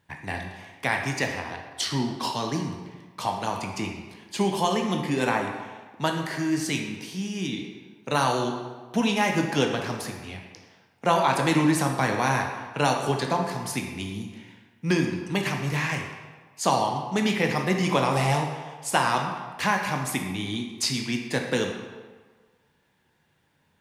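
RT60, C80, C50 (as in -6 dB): 1.4 s, 6.5 dB, 4.5 dB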